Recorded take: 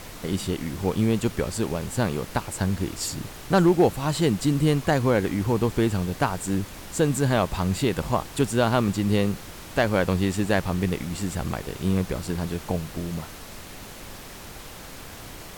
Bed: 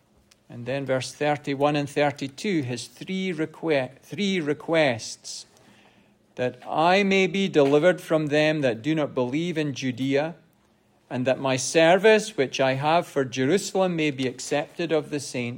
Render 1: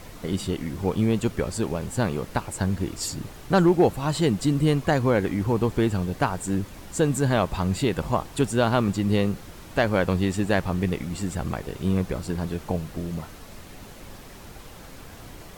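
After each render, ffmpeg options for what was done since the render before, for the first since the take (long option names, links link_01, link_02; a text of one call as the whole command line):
ffmpeg -i in.wav -af "afftdn=noise_reduction=6:noise_floor=-41" out.wav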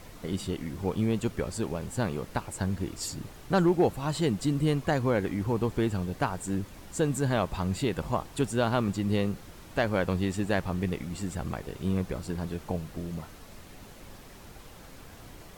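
ffmpeg -i in.wav -af "volume=-5dB" out.wav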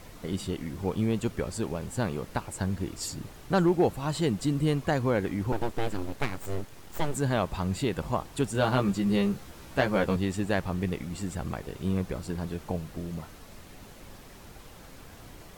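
ffmpeg -i in.wav -filter_complex "[0:a]asettb=1/sr,asplit=3[link_01][link_02][link_03];[link_01]atrim=end=5.524[link_04];[link_02]atrim=start=5.52:end=7.15,asetpts=PTS-STARTPTS,afade=type=in:duration=0.004:curve=qsin,afade=type=out:start_time=1.626:duration=0.004:curve=qsin,aeval=exprs='abs(val(0))':channel_layout=same[link_05];[link_03]atrim=start=7.146[link_06];[link_04][link_05]acrossfade=duration=0.004:curve1=hsin:curve2=qsin[link_07];[link_07][link_06]acrossfade=duration=0.004:curve1=qsin:curve2=hsin,asettb=1/sr,asplit=3[link_08][link_09][link_10];[link_08]atrim=end=8.534[link_11];[link_09]atrim=start=8.53:end=10.16,asetpts=PTS-STARTPTS,afade=type=in:duration=0.004:curve=qsin,afade=type=out:start_time=1.626:duration=0.004:curve=qsin,asplit=2[link_12][link_13];[link_13]adelay=15,volume=-3dB[link_14];[link_12][link_14]amix=inputs=2:normalize=0,atrim=end_sample=71883[link_15];[link_10]atrim=start=10.156[link_16];[link_11][link_15]acrossfade=duration=0.004:curve1=hsin:curve2=qsin[link_17];[link_17][link_16]acrossfade=duration=0.004:curve1=qsin:curve2=hsin" out.wav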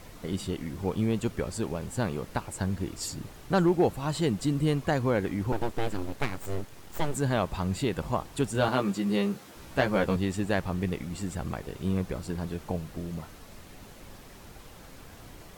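ffmpeg -i in.wav -filter_complex "[0:a]asettb=1/sr,asplit=3[link_01][link_02][link_03];[link_01]atrim=end=8.684[link_04];[link_02]atrim=start=8.68:end=9.56,asetpts=PTS-STARTPTS,afade=type=in:duration=0.004:curve=qsin,afade=type=out:start_time=0.876:duration=0.004:curve=qsin,highpass=180[link_05];[link_03]atrim=start=9.556[link_06];[link_04][link_05]acrossfade=duration=0.004:curve1=hsin:curve2=qsin[link_07];[link_07][link_06]acrossfade=duration=0.004:curve1=qsin:curve2=hsin" out.wav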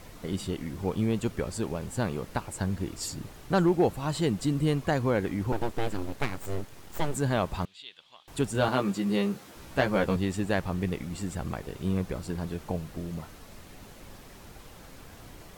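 ffmpeg -i in.wav -filter_complex "[0:a]asettb=1/sr,asplit=3[link_01][link_02][link_03];[link_01]atrim=end=7.654[link_04];[link_02]atrim=start=7.65:end=8.28,asetpts=PTS-STARTPTS,afade=type=in:duration=0.004:curve=qsin,afade=type=out:start_time=0.626:duration=0.004:curve=qsin,bandpass=frequency=3400:width_type=q:width=4.9[link_05];[link_03]atrim=start=8.276[link_06];[link_04][link_05]acrossfade=duration=0.004:curve1=hsin:curve2=qsin[link_07];[link_07][link_06]acrossfade=duration=0.004:curve1=qsin:curve2=hsin" out.wav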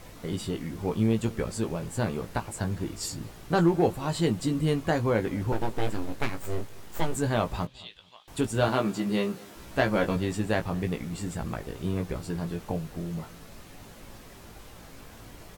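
ffmpeg -i in.wav -filter_complex "[0:a]asplit=2[link_01][link_02];[link_02]adelay=18,volume=-6.5dB[link_03];[link_01][link_03]amix=inputs=2:normalize=0,asplit=2[link_04][link_05];[link_05]adelay=219,lowpass=frequency=2000:poles=1,volume=-22.5dB,asplit=2[link_06][link_07];[link_07]adelay=219,lowpass=frequency=2000:poles=1,volume=0.35[link_08];[link_04][link_06][link_08]amix=inputs=3:normalize=0" out.wav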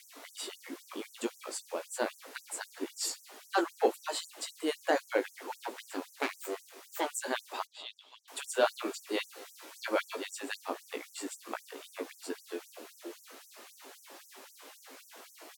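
ffmpeg -i in.wav -af "asoftclip=type=tanh:threshold=-10dB,afftfilt=real='re*gte(b*sr/1024,220*pow(5700/220,0.5+0.5*sin(2*PI*3.8*pts/sr)))':imag='im*gte(b*sr/1024,220*pow(5700/220,0.5+0.5*sin(2*PI*3.8*pts/sr)))':win_size=1024:overlap=0.75" out.wav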